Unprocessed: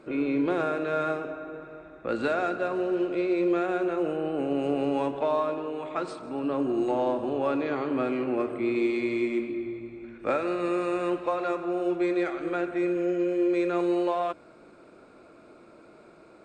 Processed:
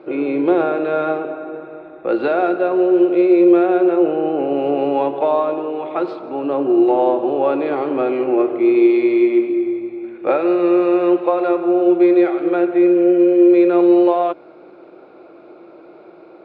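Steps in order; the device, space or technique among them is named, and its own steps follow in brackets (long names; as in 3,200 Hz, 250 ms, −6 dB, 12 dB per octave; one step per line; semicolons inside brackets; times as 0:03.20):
guitar cabinet (loudspeaker in its box 110–4,000 Hz, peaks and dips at 110 Hz −9 dB, 230 Hz −7 dB, 350 Hz +9 dB, 520 Hz +5 dB, 780 Hz +8 dB, 1,700 Hz −3 dB)
level +5.5 dB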